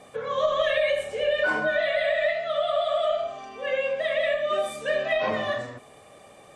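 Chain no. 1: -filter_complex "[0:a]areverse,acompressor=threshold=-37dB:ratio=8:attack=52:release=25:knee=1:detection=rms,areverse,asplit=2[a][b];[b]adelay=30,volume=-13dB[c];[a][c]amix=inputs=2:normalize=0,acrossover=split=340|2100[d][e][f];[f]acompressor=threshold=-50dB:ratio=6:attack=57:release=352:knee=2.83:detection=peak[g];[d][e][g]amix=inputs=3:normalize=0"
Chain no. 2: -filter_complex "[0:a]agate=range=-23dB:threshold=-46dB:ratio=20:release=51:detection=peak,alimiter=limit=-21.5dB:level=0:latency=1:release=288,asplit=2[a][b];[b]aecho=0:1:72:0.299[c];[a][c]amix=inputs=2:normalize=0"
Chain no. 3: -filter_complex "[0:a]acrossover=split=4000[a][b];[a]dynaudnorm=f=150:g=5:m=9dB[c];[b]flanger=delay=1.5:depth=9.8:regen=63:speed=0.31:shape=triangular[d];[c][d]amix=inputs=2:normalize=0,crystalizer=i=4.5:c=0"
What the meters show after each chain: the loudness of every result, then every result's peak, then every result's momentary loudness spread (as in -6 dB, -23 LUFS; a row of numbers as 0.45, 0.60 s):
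-35.0, -30.5, -14.5 LUFS; -24.0, -20.0, -1.0 dBFS; 4, 4, 7 LU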